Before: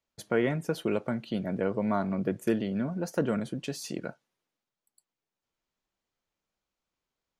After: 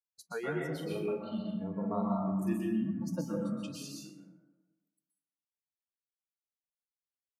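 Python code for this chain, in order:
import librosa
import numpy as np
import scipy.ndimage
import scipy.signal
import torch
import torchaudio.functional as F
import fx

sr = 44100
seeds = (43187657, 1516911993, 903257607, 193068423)

y = fx.noise_reduce_blind(x, sr, reduce_db=26)
y = fx.doubler(y, sr, ms=41.0, db=-7.0, at=(0.72, 2.63))
y = fx.rev_plate(y, sr, seeds[0], rt60_s=1.2, hf_ratio=0.4, predelay_ms=110, drr_db=-2.5)
y = F.gain(torch.from_numpy(y), -7.5).numpy()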